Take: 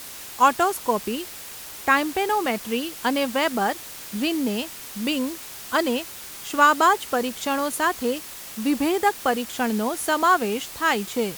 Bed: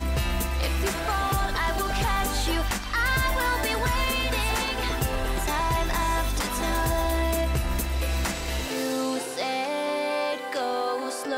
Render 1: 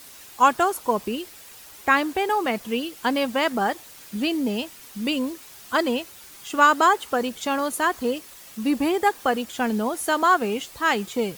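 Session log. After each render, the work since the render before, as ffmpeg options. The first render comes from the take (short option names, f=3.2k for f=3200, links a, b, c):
-af "afftdn=nr=8:nf=-39"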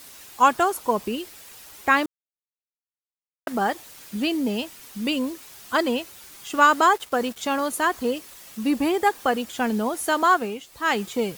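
-filter_complex "[0:a]asettb=1/sr,asplit=3[a][b][c];[a]atrim=end=6.534[d];[b]atrim=start=6.53:end=7.39,asetpts=PTS-STARTPTS,afade=t=in:d=0.004:c=qsin,afade=t=out:st=0.856:d=0.004:c=qsin,aeval=exprs='val(0)*gte(abs(val(0)),0.0126)':c=same[e];[c]atrim=start=7.386[f];[d][e]acrossfade=d=0.004:c1=hsin:c2=qsin[g];[g][f]acrossfade=d=0.004:c1=qsin:c2=hsin,asplit=5[h][i][j][k][l];[h]atrim=end=2.06,asetpts=PTS-STARTPTS,afade=t=out:st=2.056:d=0.004:c=hsin[m];[i]atrim=start=2.06:end=3.47,asetpts=PTS-STARTPTS,volume=0[n];[j]atrim=start=3.47:end=10.61,asetpts=PTS-STARTPTS,afade=t=in:d=0.004:c=hsin,afade=t=out:st=6.85:d=0.29:silence=0.334965[o];[k]atrim=start=10.61:end=10.66,asetpts=PTS-STARTPTS,volume=-9.5dB[p];[l]atrim=start=10.66,asetpts=PTS-STARTPTS,afade=t=in:d=0.29:silence=0.334965[q];[m][n][o][p][q]concat=n=5:v=0:a=1"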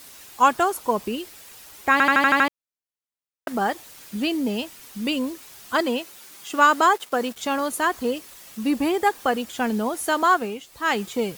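-filter_complex "[0:a]asettb=1/sr,asplit=3[a][b][c];[a]atrim=end=5.804[d];[b]atrim=start=5.8:end=7.33,asetpts=PTS-STARTPTS,afade=t=in:d=0.004:c=qsin,afade=t=out:st=1.526:d=0.004:c=qsin,highpass=160[e];[c]atrim=start=7.326[f];[d][e]acrossfade=d=0.004:c1=hsin:c2=qsin[g];[g][f]acrossfade=d=0.004:c1=qsin:c2=hsin,asplit=8[h][i][j][k][l][m][n][o];[h]atrim=end=2.002[p];[i]atrim=start=1.918:end=2.002[q];[j]atrim=start=1.918:end=2.002[r];[k]atrim=start=1.918:end=2.002[s];[l]atrim=start=1.918:end=2.002[t];[m]atrim=start=1.918:end=2.002[u];[n]atrim=start=1.918:end=2.002[v];[o]atrim=start=2.478[w];[p][q]acrossfade=d=0.004:c1=hsin:c2=hsin[x];[x][r]acrossfade=d=0.004:c1=hsin:c2=hsin[y];[y][s]acrossfade=d=0.004:c1=hsin:c2=hsin[z];[z][t]acrossfade=d=0.004:c1=hsin:c2=hsin[aa];[aa][u]acrossfade=d=0.004:c1=hsin:c2=hsin[ab];[ab][v]acrossfade=d=0.004:c1=hsin:c2=hsin[ac];[ac][w]acrossfade=d=0.004:c1=hsin:c2=hsin"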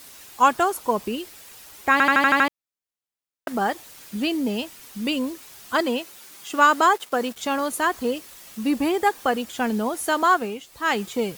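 -filter_complex "[0:a]asettb=1/sr,asplit=3[a][b][c];[a]atrim=end=7.604[d];[b]atrim=start=7.6:end=9.2,asetpts=PTS-STARTPTS,afade=t=in:d=0.004:c=qsin,afade=t=out:st=1.596:d=0.004:c=qsin,acrusher=bits=7:mix=0:aa=0.5[e];[c]atrim=start=9.196[f];[d][e]acrossfade=d=0.004:c1=hsin:c2=qsin[g];[g][f]acrossfade=d=0.004:c1=qsin:c2=hsin"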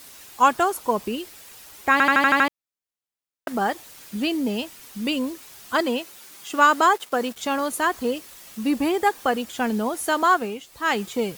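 -af anull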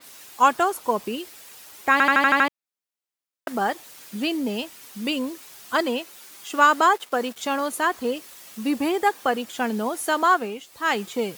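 -af "highpass=f=190:p=1,adynamicequalizer=threshold=0.0141:dfrequency=4400:dqfactor=0.7:tfrequency=4400:tqfactor=0.7:attack=5:release=100:ratio=0.375:range=2:mode=cutabove:tftype=highshelf"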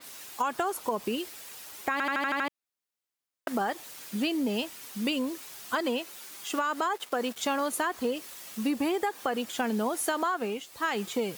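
-af "alimiter=limit=-14.5dB:level=0:latency=1:release=62,acompressor=threshold=-25dB:ratio=6"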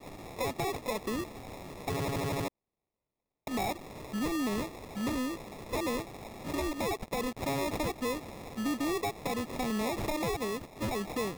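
-af "acrusher=samples=29:mix=1:aa=0.000001,asoftclip=type=tanh:threshold=-27dB"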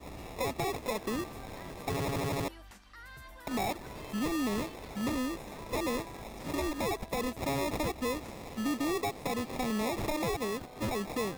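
-filter_complex "[1:a]volume=-25.5dB[a];[0:a][a]amix=inputs=2:normalize=0"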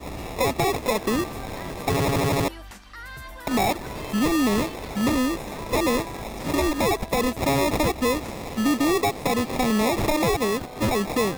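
-af "volume=10.5dB"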